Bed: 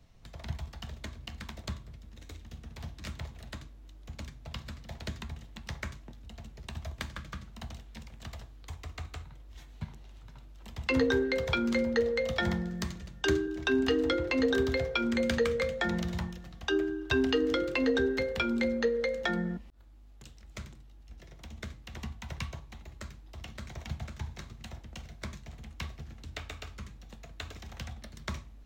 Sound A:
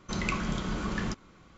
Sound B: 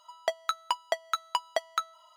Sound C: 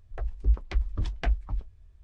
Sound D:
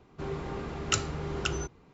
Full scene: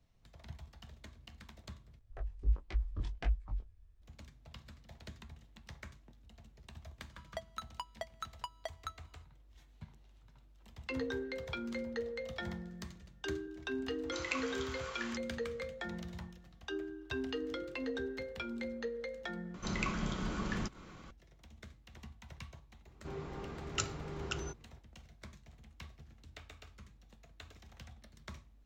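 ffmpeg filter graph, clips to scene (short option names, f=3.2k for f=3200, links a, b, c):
-filter_complex "[1:a]asplit=2[a][b];[0:a]volume=-11.5dB[c];[3:a]flanger=delay=18.5:depth=5.7:speed=1.4[d];[a]highpass=1.1k[e];[b]acompressor=mode=upward:threshold=-37dB:ratio=2.5:attack=3.2:release=140:knee=2.83:detection=peak[f];[c]asplit=2[g][h];[g]atrim=end=1.994[i];[d]atrim=end=2.03,asetpts=PTS-STARTPTS,volume=-6dB[j];[h]atrim=start=4.016[k];[2:a]atrim=end=2.16,asetpts=PTS-STARTPTS,volume=-14dB,afade=t=in:d=0.004:c=hsin,afade=t=out:st=2.156:d=0.004:c=hsin,adelay=7090[l];[e]atrim=end=1.57,asetpts=PTS-STARTPTS,volume=-4.5dB,afade=t=in:d=0.004:c=hsin,afade=t=out:st=1.566:d=0.004:c=hsin,adelay=14030[m];[f]atrim=end=1.57,asetpts=PTS-STARTPTS,volume=-5dB,afade=t=in:d=0.004:c=hsin,afade=t=out:st=1.566:d=0.004:c=hsin,adelay=19540[n];[4:a]atrim=end=1.93,asetpts=PTS-STARTPTS,volume=-8dB,afade=t=in:d=0.004:c=hsin,afade=t=out:st=1.926:d=0.004:c=hsin,adelay=22860[o];[i][j]acrossfade=d=0.004:c1=hsin:c2=hsin[p];[p][k]acrossfade=d=0.004:c1=hsin:c2=hsin[q];[q][l][m][n][o]amix=inputs=5:normalize=0"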